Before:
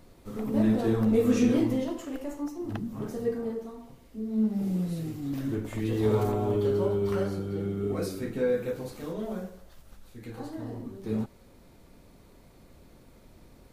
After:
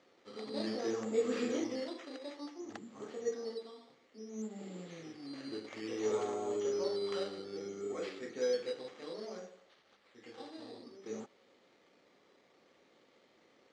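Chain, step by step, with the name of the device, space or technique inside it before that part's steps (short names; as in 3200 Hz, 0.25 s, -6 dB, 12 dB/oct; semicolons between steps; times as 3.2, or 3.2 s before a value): circuit-bent sampling toy (decimation with a swept rate 8×, swing 60% 0.59 Hz; speaker cabinet 570–5600 Hz, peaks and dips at 660 Hz -7 dB, 970 Hz -9 dB, 1500 Hz -7 dB, 2600 Hz -6 dB, 3700 Hz -3 dB, 5200 Hz -5 dB)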